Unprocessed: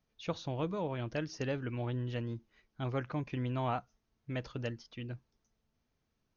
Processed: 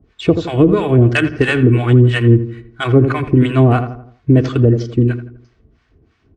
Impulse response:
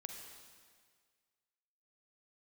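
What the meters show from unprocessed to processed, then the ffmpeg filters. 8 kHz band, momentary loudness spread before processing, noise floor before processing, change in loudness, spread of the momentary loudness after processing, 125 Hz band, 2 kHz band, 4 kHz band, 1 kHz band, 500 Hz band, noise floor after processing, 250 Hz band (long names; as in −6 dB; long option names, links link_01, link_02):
can't be measured, 9 LU, −81 dBFS, +24.5 dB, 7 LU, +25.5 dB, +24.0 dB, +19.5 dB, +16.5 dB, +23.0 dB, −58 dBFS, +25.5 dB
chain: -filter_complex "[0:a]highpass=43,equalizer=frequency=810:width=1.5:gain=-12,aecho=1:1:2.7:0.55,acrusher=samples=4:mix=1:aa=0.000001,acrossover=split=730[link_01][link_02];[link_01]aeval=exprs='val(0)*(1-1/2+1/2*cos(2*PI*3*n/s))':channel_layout=same[link_03];[link_02]aeval=exprs='val(0)*(1-1/2-1/2*cos(2*PI*3*n/s))':channel_layout=same[link_04];[link_03][link_04]amix=inputs=2:normalize=0,adynamicsmooth=sensitivity=3:basefreq=2300,asplit=2[link_05][link_06];[link_06]adelay=83,lowpass=frequency=1800:poles=1,volume=-11.5dB,asplit=2[link_07][link_08];[link_08]adelay=83,lowpass=frequency=1800:poles=1,volume=0.45,asplit=2[link_09][link_10];[link_10]adelay=83,lowpass=frequency=1800:poles=1,volume=0.45,asplit=2[link_11][link_12];[link_12]adelay=83,lowpass=frequency=1800:poles=1,volume=0.45,asplit=2[link_13][link_14];[link_14]adelay=83,lowpass=frequency=1800:poles=1,volume=0.45[link_15];[link_05][link_07][link_09][link_11][link_13][link_15]amix=inputs=6:normalize=0,alimiter=level_in=33.5dB:limit=-1dB:release=50:level=0:latency=1,volume=-1dB" -ar 24000 -c:a aac -b:a 48k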